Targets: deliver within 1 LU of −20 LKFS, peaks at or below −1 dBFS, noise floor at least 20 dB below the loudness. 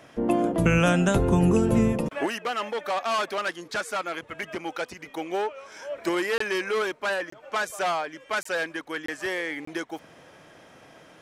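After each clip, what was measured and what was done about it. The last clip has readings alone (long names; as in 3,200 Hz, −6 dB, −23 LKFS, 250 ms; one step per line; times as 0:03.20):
number of dropouts 5; longest dropout 24 ms; integrated loudness −26.5 LKFS; sample peak −10.0 dBFS; target loudness −20.0 LKFS
→ repair the gap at 0:06.38/0:07.30/0:08.43/0:09.06/0:09.65, 24 ms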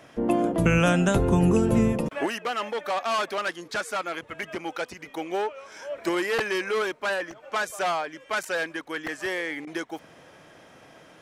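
number of dropouts 0; integrated loudness −26.5 LKFS; sample peak −10.0 dBFS; target loudness −20.0 LKFS
→ level +6.5 dB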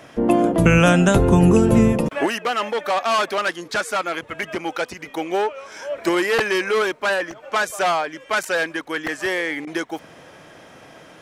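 integrated loudness −20.0 LKFS; sample peak −3.5 dBFS; background noise floor −46 dBFS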